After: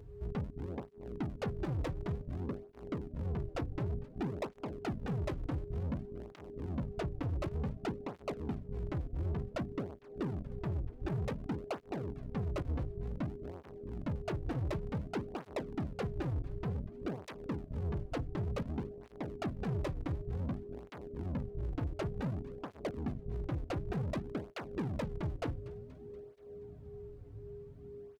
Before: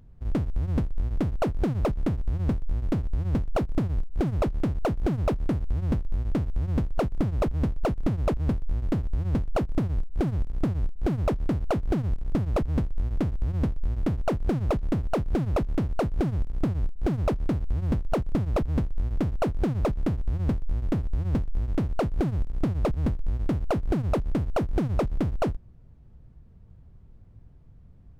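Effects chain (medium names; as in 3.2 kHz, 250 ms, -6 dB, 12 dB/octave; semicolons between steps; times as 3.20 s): hum notches 50/100/150/200/250 Hz; in parallel at 0 dB: compression, threshold -36 dBFS, peak gain reduction 15 dB; on the sum: saturation -29 dBFS, distortion -9 dB; whistle 410 Hz -43 dBFS; on a send: frequency-shifting echo 239 ms, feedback 62%, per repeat -130 Hz, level -18.5 dB; on the sum: cancelling through-zero flanger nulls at 0.55 Hz, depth 5.2 ms; trim -2 dB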